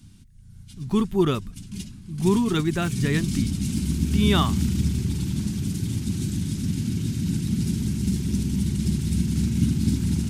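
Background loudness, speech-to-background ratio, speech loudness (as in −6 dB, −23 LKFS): −25.5 LKFS, 1.0 dB, −24.5 LKFS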